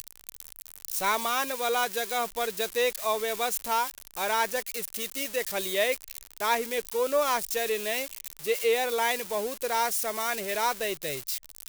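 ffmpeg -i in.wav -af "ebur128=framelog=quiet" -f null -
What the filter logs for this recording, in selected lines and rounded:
Integrated loudness:
  I:         -28.1 LUFS
  Threshold: -38.4 LUFS
Loudness range:
  LRA:         1.3 LU
  Threshold: -48.2 LUFS
  LRA low:   -28.8 LUFS
  LRA high:  -27.5 LUFS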